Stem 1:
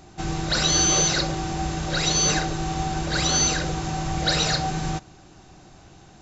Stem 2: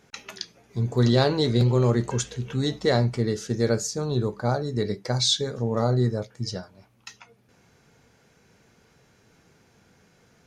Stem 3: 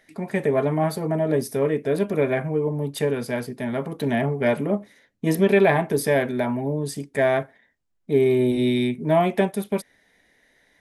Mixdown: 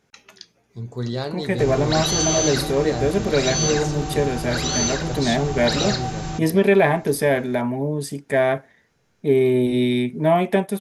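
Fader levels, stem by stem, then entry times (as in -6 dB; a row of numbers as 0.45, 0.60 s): -2.0, -7.0, +1.5 dB; 1.40, 0.00, 1.15 s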